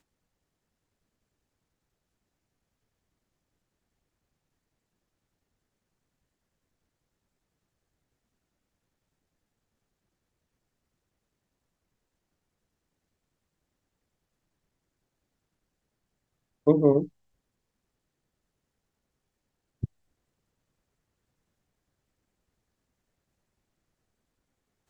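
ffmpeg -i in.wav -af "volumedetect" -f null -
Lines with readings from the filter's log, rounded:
mean_volume: -38.2 dB
max_volume: -7.1 dB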